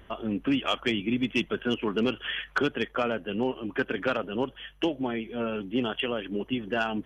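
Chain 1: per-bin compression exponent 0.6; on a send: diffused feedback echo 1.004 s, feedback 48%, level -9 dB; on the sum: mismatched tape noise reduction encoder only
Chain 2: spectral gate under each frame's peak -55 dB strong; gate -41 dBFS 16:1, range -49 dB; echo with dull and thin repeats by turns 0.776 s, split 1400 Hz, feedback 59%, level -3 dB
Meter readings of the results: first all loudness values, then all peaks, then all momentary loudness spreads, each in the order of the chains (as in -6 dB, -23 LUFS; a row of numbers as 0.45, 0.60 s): -25.0, -28.0 LUFS; -10.0, -11.5 dBFS; 3, 4 LU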